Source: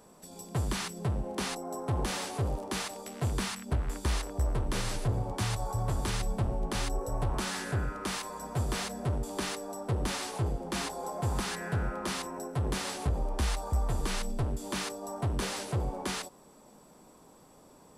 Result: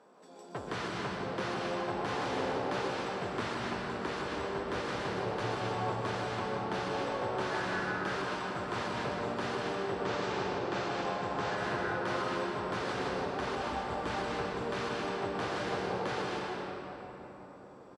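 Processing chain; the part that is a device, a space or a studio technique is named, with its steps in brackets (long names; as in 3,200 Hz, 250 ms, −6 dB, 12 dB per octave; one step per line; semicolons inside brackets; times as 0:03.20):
station announcement (band-pass filter 360–4,500 Hz; parametric band 1,500 Hz +4.5 dB 0.52 octaves; loudspeakers that aren't time-aligned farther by 59 metres −6 dB, 94 metres −12 dB; convolution reverb RT60 3.8 s, pre-delay 117 ms, DRR −2 dB)
0:10.03–0:11.58: Butterworth low-pass 8,200 Hz 36 dB per octave
spectral tilt −1.5 dB per octave
level −2.5 dB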